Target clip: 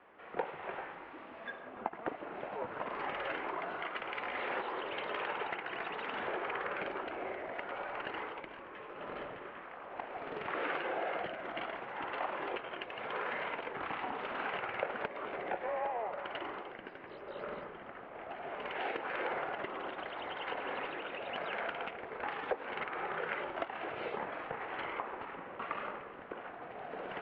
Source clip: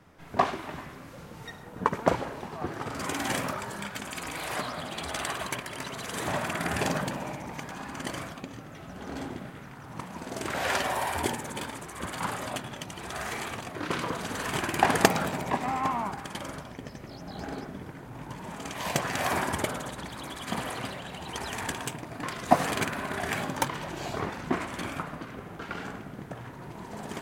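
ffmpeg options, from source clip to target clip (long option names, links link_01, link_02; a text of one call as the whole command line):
ffmpeg -i in.wav -af "acompressor=threshold=-33dB:ratio=8,highpass=frequency=570:width_type=q:width=0.5412,highpass=frequency=570:width_type=q:width=1.307,lowpass=frequency=3100:width_type=q:width=0.5176,lowpass=frequency=3100:width_type=q:width=0.7071,lowpass=frequency=3100:width_type=q:width=1.932,afreqshift=-230,volume=1.5dB" out.wav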